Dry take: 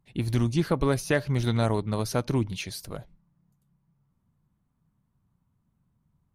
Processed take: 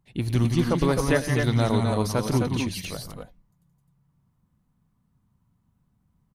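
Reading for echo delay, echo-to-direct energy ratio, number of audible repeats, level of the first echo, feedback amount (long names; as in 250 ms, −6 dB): 107 ms, −1.5 dB, 3, −16.0 dB, repeats not evenly spaced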